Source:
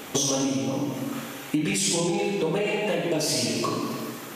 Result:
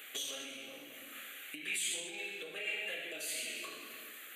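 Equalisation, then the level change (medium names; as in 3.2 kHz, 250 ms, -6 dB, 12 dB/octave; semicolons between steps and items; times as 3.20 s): Bessel high-pass 1.3 kHz, order 2; static phaser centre 2.3 kHz, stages 4; -4.5 dB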